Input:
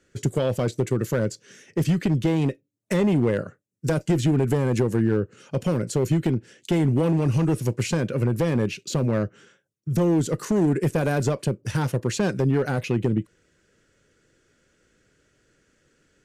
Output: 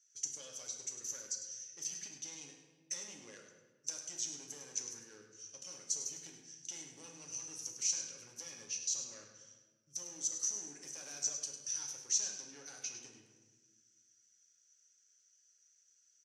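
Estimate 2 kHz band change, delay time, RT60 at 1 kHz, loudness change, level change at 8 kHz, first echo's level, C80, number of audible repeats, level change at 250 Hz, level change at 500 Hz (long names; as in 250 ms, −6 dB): −21.0 dB, 102 ms, 1.2 s, −16.0 dB, +4.0 dB, −10.0 dB, 5.5 dB, 1, −37.5 dB, −34.0 dB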